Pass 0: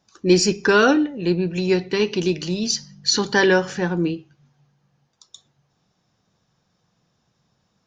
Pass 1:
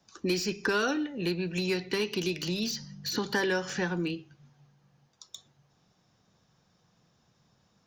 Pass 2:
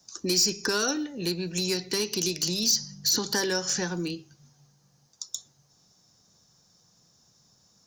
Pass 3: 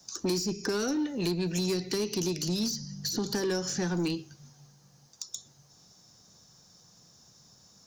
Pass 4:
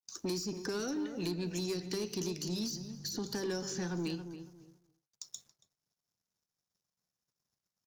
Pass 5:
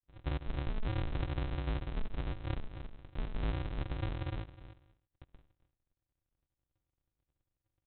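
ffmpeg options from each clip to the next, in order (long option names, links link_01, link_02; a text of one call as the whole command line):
ffmpeg -i in.wav -filter_complex "[0:a]acrossover=split=1300|4800[link_01][link_02][link_03];[link_01]acompressor=threshold=-30dB:ratio=4[link_04];[link_02]acompressor=threshold=-33dB:ratio=4[link_05];[link_03]acompressor=threshold=-41dB:ratio=4[link_06];[link_04][link_05][link_06]amix=inputs=3:normalize=0,acrossover=split=170|630|1900[link_07][link_08][link_09][link_10];[link_10]asoftclip=type=hard:threshold=-31dB[link_11];[link_07][link_08][link_09][link_11]amix=inputs=4:normalize=0" out.wav
ffmpeg -i in.wav -af "highshelf=frequency=4000:width_type=q:width=1.5:gain=12" out.wav
ffmpeg -i in.wav -filter_complex "[0:a]acrossover=split=450[link_01][link_02];[link_02]acompressor=threshold=-35dB:ratio=16[link_03];[link_01][link_03]amix=inputs=2:normalize=0,asoftclip=type=tanh:threshold=-27.5dB,volume=4.5dB" out.wav
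ffmpeg -i in.wav -filter_complex "[0:a]aeval=exprs='sgn(val(0))*max(abs(val(0))-0.00141,0)':channel_layout=same,asplit=2[link_01][link_02];[link_02]adelay=278,lowpass=frequency=1300:poles=1,volume=-9dB,asplit=2[link_03][link_04];[link_04]adelay=278,lowpass=frequency=1300:poles=1,volume=0.25,asplit=2[link_05][link_06];[link_06]adelay=278,lowpass=frequency=1300:poles=1,volume=0.25[link_07];[link_01][link_03][link_05][link_07]amix=inputs=4:normalize=0,agate=range=-33dB:threshold=-56dB:ratio=3:detection=peak,volume=-6.5dB" out.wav
ffmpeg -i in.wav -af "highpass=frequency=470:width_type=q:width=4.9,alimiter=level_in=9dB:limit=-24dB:level=0:latency=1:release=104,volume=-9dB,aresample=8000,acrusher=samples=37:mix=1:aa=0.000001,aresample=44100,volume=6.5dB" out.wav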